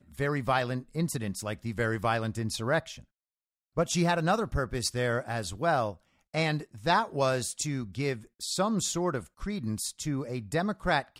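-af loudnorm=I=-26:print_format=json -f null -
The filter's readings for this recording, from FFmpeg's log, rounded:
"input_i" : "-30.4",
"input_tp" : "-12.4",
"input_lra" : "1.4",
"input_thresh" : "-40.6",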